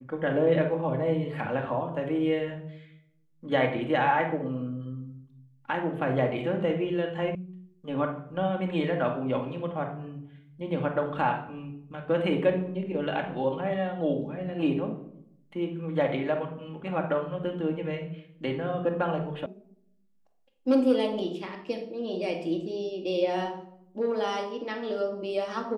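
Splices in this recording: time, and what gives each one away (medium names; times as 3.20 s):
7.35 s: sound stops dead
19.46 s: sound stops dead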